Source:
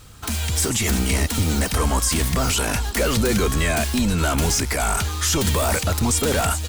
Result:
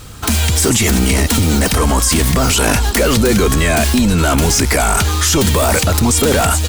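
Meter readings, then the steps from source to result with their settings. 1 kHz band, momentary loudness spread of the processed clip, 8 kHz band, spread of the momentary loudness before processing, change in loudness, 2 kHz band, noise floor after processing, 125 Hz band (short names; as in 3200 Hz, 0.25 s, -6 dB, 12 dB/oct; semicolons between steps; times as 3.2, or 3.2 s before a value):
+7.5 dB, 2 LU, +7.0 dB, 2 LU, +7.5 dB, +7.5 dB, -20 dBFS, +7.5 dB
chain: in parallel at -1 dB: negative-ratio compressor -24 dBFS, ratio -1; on the sum: bell 320 Hz +2.5 dB 1.9 oct; gain +3 dB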